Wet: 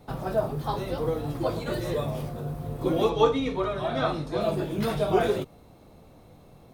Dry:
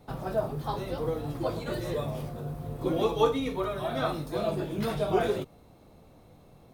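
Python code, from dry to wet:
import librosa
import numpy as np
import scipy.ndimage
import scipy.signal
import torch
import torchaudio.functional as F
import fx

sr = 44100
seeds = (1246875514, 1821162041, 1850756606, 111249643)

y = fx.lowpass(x, sr, hz=6500.0, slope=12, at=(3.09, 4.41))
y = y * 10.0 ** (3.0 / 20.0)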